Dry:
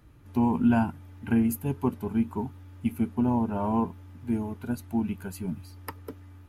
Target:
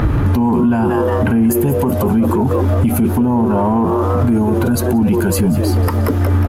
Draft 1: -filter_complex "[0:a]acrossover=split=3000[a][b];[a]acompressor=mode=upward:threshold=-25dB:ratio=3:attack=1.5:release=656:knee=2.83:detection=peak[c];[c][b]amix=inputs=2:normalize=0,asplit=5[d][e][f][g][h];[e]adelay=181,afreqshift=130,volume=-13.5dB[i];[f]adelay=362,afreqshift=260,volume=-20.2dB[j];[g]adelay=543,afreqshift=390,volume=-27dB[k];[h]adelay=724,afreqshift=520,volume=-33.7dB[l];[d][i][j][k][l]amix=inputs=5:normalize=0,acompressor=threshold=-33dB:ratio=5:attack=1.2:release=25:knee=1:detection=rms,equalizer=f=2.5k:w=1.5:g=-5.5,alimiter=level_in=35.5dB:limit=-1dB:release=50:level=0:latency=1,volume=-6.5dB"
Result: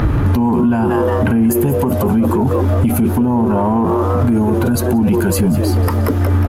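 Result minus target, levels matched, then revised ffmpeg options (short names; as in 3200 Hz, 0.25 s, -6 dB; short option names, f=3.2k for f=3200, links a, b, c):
compressor: peak gain reduction +7 dB
-filter_complex "[0:a]acrossover=split=3000[a][b];[a]acompressor=mode=upward:threshold=-25dB:ratio=3:attack=1.5:release=656:knee=2.83:detection=peak[c];[c][b]amix=inputs=2:normalize=0,asplit=5[d][e][f][g][h];[e]adelay=181,afreqshift=130,volume=-13.5dB[i];[f]adelay=362,afreqshift=260,volume=-20.2dB[j];[g]adelay=543,afreqshift=390,volume=-27dB[k];[h]adelay=724,afreqshift=520,volume=-33.7dB[l];[d][i][j][k][l]amix=inputs=5:normalize=0,acompressor=threshold=-24dB:ratio=5:attack=1.2:release=25:knee=1:detection=rms,equalizer=f=2.5k:w=1.5:g=-5.5,alimiter=level_in=35.5dB:limit=-1dB:release=50:level=0:latency=1,volume=-6.5dB"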